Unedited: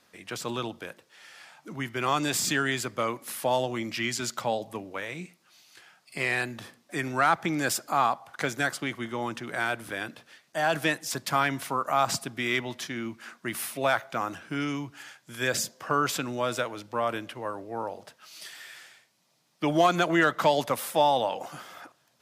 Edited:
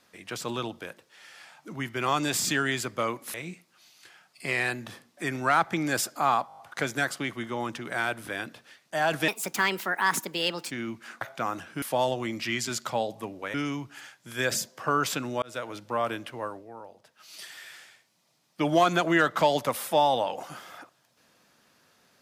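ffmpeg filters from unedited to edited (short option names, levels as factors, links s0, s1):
-filter_complex "[0:a]asplit=15[s0][s1][s2][s3][s4][s5][s6][s7][s8][s9][s10][s11][s12][s13][s14];[s0]atrim=end=3.342[s15];[s1]atrim=start=5.058:end=8.222[s16];[s2]atrim=start=8.198:end=8.222[s17];[s3]atrim=start=8.198:end=8.222[s18];[s4]atrim=start=8.198:end=8.222[s19];[s5]atrim=start=8.198:end=8.222[s20];[s6]atrim=start=8.198:end=10.904[s21];[s7]atrim=start=10.9:end=12.89,asetpts=PTS-STARTPTS,asetrate=61299,aresample=44100[s22];[s8]atrim=start=12.886:end=13.392[s23];[s9]atrim=start=13.958:end=14.572[s24];[s10]atrim=start=3.338:end=5.062[s25];[s11]atrim=start=14.568:end=16.45,asetpts=PTS-STARTPTS,afade=t=out:st=1.878:d=0.004:c=hsin[s26];[s12]atrim=start=16.45:end=17.76,asetpts=PTS-STARTPTS,afade=t=in:d=0.29,afade=t=out:st=1.01:d=0.3:silence=0.281838[s27];[s13]atrim=start=17.76:end=18.07,asetpts=PTS-STARTPTS,volume=0.282[s28];[s14]atrim=start=18.07,asetpts=PTS-STARTPTS,afade=t=in:d=0.3:silence=0.281838[s29];[s15][s16]acrossfade=d=0.004:c1=hsin:c2=hsin[s30];[s30][s17]acrossfade=d=0.004:c1=hsin:c2=hsin[s31];[s31][s18]acrossfade=d=0.004:c1=hsin:c2=hsin[s32];[s32][s19]acrossfade=d=0.004:c1=hsin:c2=hsin[s33];[s33][s20]acrossfade=d=0.004:c1=hsin:c2=hsin[s34];[s34][s21]acrossfade=d=0.004:c1=hsin:c2=hsin[s35];[s35][s22]acrossfade=d=0.004:c1=hsin:c2=hsin[s36];[s36][s23]acrossfade=d=0.004:c1=hsin:c2=hsin[s37];[s37][s24]acrossfade=d=0.004:c1=hsin:c2=hsin[s38];[s38][s25]acrossfade=d=0.004:c1=hsin:c2=hsin[s39];[s26][s27][s28][s29]concat=n=4:v=0:a=1[s40];[s39][s40]acrossfade=d=0.004:c1=hsin:c2=hsin"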